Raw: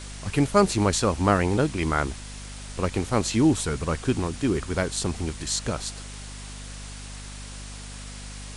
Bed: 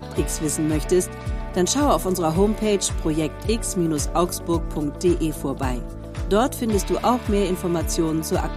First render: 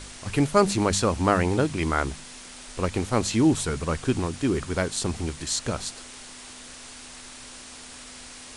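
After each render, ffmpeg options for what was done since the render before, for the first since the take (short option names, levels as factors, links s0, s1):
-af "bandreject=f=50:t=h:w=4,bandreject=f=100:t=h:w=4,bandreject=f=150:t=h:w=4,bandreject=f=200:t=h:w=4"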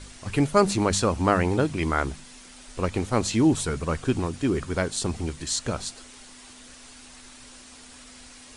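-af "afftdn=nr=6:nf=-43"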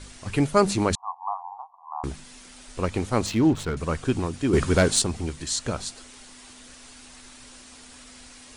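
-filter_complex "[0:a]asettb=1/sr,asplit=3[s0][s1][s2];[s0]atrim=end=0.954[s3];[s1]atrim=start=0.95:end=2.04,asetpts=PTS-STARTPTS,afade=t=in:d=0.004:c=qsin,afade=t=out:st=1.086:d=0.004:c=qsin,asuperpass=centerf=910:order=12:qfactor=2.3[s4];[s2]atrim=start=2.036[s5];[s3][s4]acrossfade=d=0.004:c1=hsin:c2=qsin[s6];[s6][s5]acrossfade=d=0.004:c1=qsin:c2=hsin,asettb=1/sr,asplit=3[s7][s8][s9];[s7]atrim=end=3.264[s10];[s8]atrim=start=3.26:end=3.77,asetpts=PTS-STARTPTS,afade=t=in:d=0.004:c=qsin,afade=t=out:st=0.506:d=0.004:c=qsin,adynamicsmooth=sensitivity=6:basefreq=1500[s11];[s9]atrim=start=3.766[s12];[s10][s11]acrossfade=d=0.004:c1=hsin:c2=qsin[s13];[s13][s12]acrossfade=d=0.004:c1=qsin:c2=hsin,asettb=1/sr,asplit=3[s14][s15][s16];[s14]atrim=end=4.534[s17];[s15]atrim=start=4.53:end=5.02,asetpts=PTS-STARTPTS,afade=t=in:d=0.004:c=qsin,afade=t=out:st=0.486:d=0.004:c=qsin,aeval=exprs='0.266*sin(PI/2*1.78*val(0)/0.266)':c=same[s18];[s16]atrim=start=5.016[s19];[s17][s18]acrossfade=d=0.004:c1=hsin:c2=qsin[s20];[s20][s19]acrossfade=d=0.004:c1=qsin:c2=hsin"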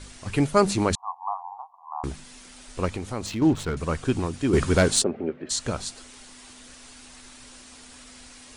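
-filter_complex "[0:a]asettb=1/sr,asplit=3[s0][s1][s2];[s0]atrim=end=2.914[s3];[s1]atrim=start=2.91:end=3.42,asetpts=PTS-STARTPTS,afade=t=in:d=0.004:c=qsin,afade=t=out:st=0.506:d=0.004:c=qsin,acompressor=threshold=0.0282:ratio=2:attack=3.2:release=140:knee=1:detection=peak[s4];[s2]atrim=start=3.416[s5];[s3][s4]acrossfade=d=0.004:c1=hsin:c2=qsin[s6];[s6][s5]acrossfade=d=0.004:c1=qsin:c2=hsin,asplit=3[s7][s8][s9];[s7]afade=t=out:st=5.02:d=0.02[s10];[s8]highpass=230,equalizer=f=230:t=q:w=4:g=6,equalizer=f=400:t=q:w=4:g=8,equalizer=f=570:t=q:w=4:g=10,equalizer=f=1000:t=q:w=4:g=-9,equalizer=f=1900:t=q:w=4:g=-4,lowpass=f=2100:w=0.5412,lowpass=f=2100:w=1.3066,afade=t=in:st=5.02:d=0.02,afade=t=out:st=5.49:d=0.02[s11];[s9]afade=t=in:st=5.49:d=0.02[s12];[s10][s11][s12]amix=inputs=3:normalize=0"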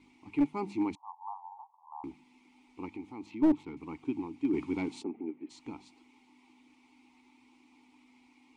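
-filter_complex "[0:a]asplit=3[s0][s1][s2];[s0]bandpass=f=300:t=q:w=8,volume=1[s3];[s1]bandpass=f=870:t=q:w=8,volume=0.501[s4];[s2]bandpass=f=2240:t=q:w=8,volume=0.355[s5];[s3][s4][s5]amix=inputs=3:normalize=0,aeval=exprs='clip(val(0),-1,0.0794)':c=same"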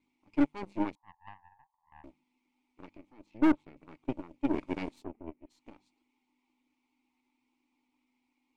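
-filter_complex "[0:a]asplit=2[s0][s1];[s1]asoftclip=type=tanh:threshold=0.0211,volume=0.335[s2];[s0][s2]amix=inputs=2:normalize=0,aeval=exprs='0.178*(cos(1*acos(clip(val(0)/0.178,-1,1)))-cos(1*PI/2))+0.0316*(cos(2*acos(clip(val(0)/0.178,-1,1)))-cos(2*PI/2))+0.0282*(cos(4*acos(clip(val(0)/0.178,-1,1)))-cos(4*PI/2))+0.0224*(cos(7*acos(clip(val(0)/0.178,-1,1)))-cos(7*PI/2))+0.00224*(cos(8*acos(clip(val(0)/0.178,-1,1)))-cos(8*PI/2))':c=same"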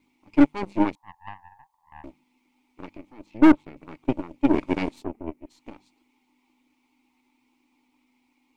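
-af "volume=3.16"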